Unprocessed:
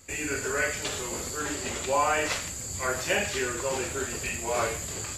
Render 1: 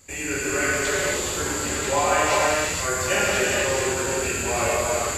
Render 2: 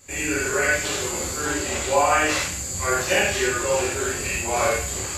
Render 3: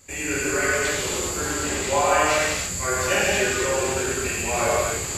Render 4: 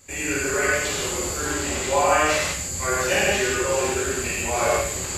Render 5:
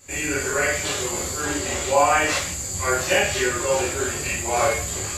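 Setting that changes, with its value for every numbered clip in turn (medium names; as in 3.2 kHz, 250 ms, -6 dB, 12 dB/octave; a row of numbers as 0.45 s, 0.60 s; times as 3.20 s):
gated-style reverb, gate: 520 ms, 120 ms, 330 ms, 210 ms, 80 ms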